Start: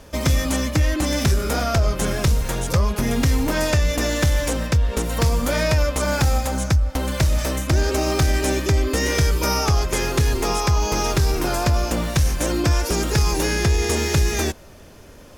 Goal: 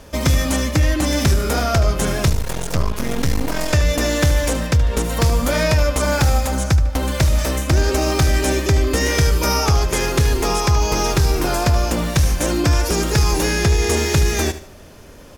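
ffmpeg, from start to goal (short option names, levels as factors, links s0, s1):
-filter_complex "[0:a]asettb=1/sr,asplit=3[s0][s1][s2];[s0]atrim=end=2.294[s3];[s1]atrim=start=2.29:end=3.73,asetpts=PTS-STARTPTS,afade=t=in:d=0.004:c=qsin,afade=t=out:st=1.436:d=0.004:c=qsin,aeval=exprs='max(val(0),0)':c=same[s4];[s2]atrim=start=3.726[s5];[s3][s4]acrossfade=d=0.004:c1=hsin:c2=qsin[s6];[s6][s5]acrossfade=d=0.004:c1=qsin:c2=hsin,aecho=1:1:75|150|225:0.211|0.0719|0.0244,volume=1.33"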